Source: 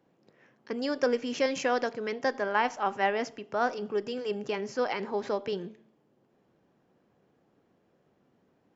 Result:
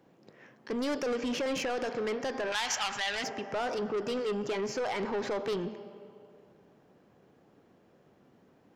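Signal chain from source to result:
0:01.28–0:01.79: Bessel low-pass filter 5,000 Hz
convolution reverb RT60 2.6 s, pre-delay 65 ms, DRR 19 dB
brickwall limiter −22 dBFS, peak gain reduction 10 dB
soft clipping −34 dBFS, distortion −8 dB
0:02.52–0:03.24: drawn EQ curve 110 Hz 0 dB, 350 Hz −13 dB, 3,300 Hz +12 dB
level +6 dB

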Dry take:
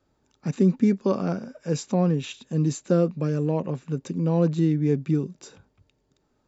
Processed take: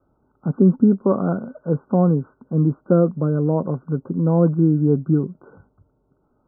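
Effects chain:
Chebyshev low-pass filter 1,500 Hz, order 10
level +5.5 dB

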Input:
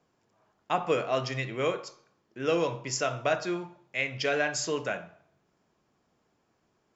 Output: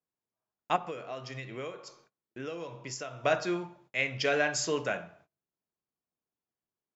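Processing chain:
noise gate −60 dBFS, range −25 dB
0:00.76–0:03.24: downward compressor 6 to 1, threshold −37 dBFS, peak gain reduction 15 dB

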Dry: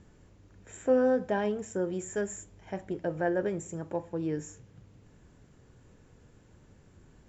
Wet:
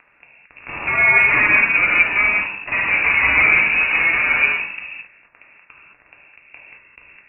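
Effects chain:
fuzz pedal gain 48 dB, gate −49 dBFS
voice inversion scrambler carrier 2,700 Hz
reverb whose tail is shaped and stops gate 240 ms flat, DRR −4.5 dB
level −5.5 dB

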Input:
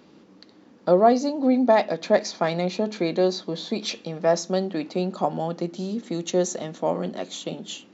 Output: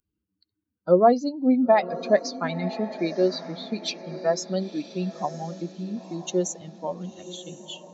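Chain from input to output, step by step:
spectral dynamics exaggerated over time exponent 2
feedback delay with all-pass diffusion 992 ms, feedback 41%, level −14 dB
level +2 dB

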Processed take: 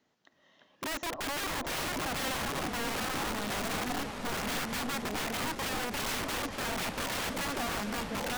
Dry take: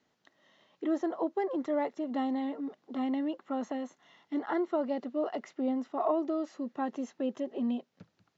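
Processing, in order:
delay with pitch and tempo change per echo 311 ms, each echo −2 semitones, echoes 2
wrap-around overflow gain 30 dB
echo whose low-pass opens from repeat to repeat 296 ms, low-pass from 200 Hz, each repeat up 2 octaves, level −3 dB

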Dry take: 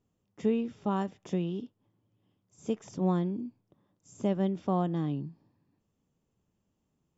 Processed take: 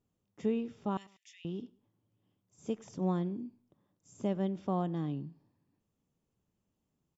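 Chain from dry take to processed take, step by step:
0:00.97–0:01.45: Chebyshev high-pass filter 1,900 Hz, order 6
repeating echo 97 ms, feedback 33%, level −23.5 dB
level −4 dB

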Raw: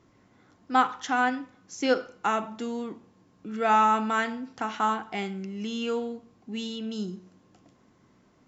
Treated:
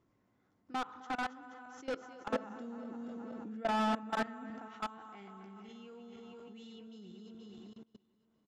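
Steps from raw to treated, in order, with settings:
feedback delay that plays each chunk backwards 237 ms, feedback 61%, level −7 dB
high-shelf EQ 2,200 Hz −6 dB
repeating echo 259 ms, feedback 23%, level −13.5 dB
output level in coarse steps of 24 dB
soft clipping −29 dBFS, distortion −7 dB
0:02.28–0:04.68: hollow resonant body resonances 240/560/1,700 Hz, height 9 dB, ringing for 20 ms
level −3 dB

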